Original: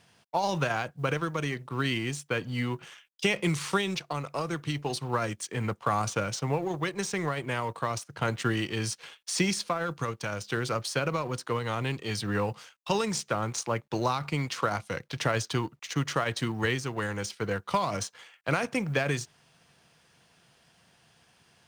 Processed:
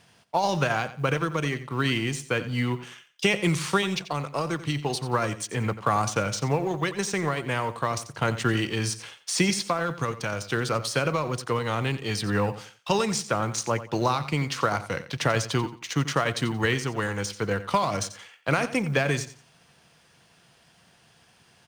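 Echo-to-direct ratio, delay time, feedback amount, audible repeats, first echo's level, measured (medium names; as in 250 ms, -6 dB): -13.5 dB, 89 ms, 25%, 2, -14.0 dB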